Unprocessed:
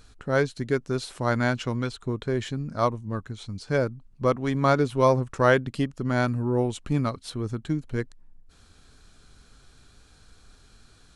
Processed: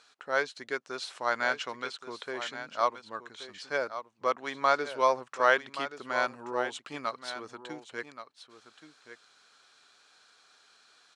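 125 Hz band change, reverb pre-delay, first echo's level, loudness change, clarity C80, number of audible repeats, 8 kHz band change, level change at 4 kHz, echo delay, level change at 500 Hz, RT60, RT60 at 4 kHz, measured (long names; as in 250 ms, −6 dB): −29.5 dB, no reverb audible, −11.5 dB, −5.5 dB, no reverb audible, 1, −4.0 dB, 0.0 dB, 1,126 ms, −7.0 dB, no reverb audible, no reverb audible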